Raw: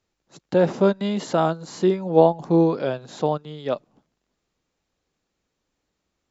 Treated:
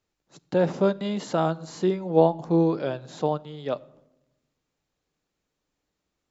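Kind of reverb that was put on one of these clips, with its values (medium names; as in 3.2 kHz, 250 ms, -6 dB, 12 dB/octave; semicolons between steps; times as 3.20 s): simulated room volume 3600 m³, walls furnished, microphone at 0.42 m; trim -3.5 dB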